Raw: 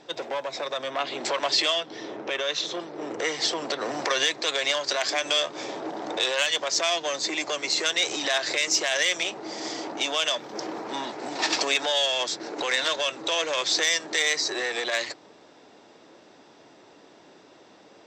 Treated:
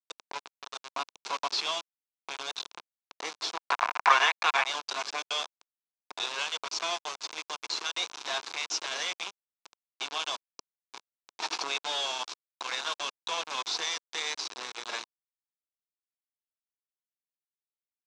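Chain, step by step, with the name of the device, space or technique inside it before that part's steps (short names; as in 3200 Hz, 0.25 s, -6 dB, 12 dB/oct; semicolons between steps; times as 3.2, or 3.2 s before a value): HPF 290 Hz 24 dB/oct; hand-held game console (bit-crush 4-bit; speaker cabinet 440–5800 Hz, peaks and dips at 570 Hz -8 dB, 1000 Hz +4 dB, 1900 Hz -10 dB, 3100 Hz -4 dB, 4700 Hz -3 dB); 3.57–4.66 band shelf 1300 Hz +13.5 dB 2.3 oct; gain -5 dB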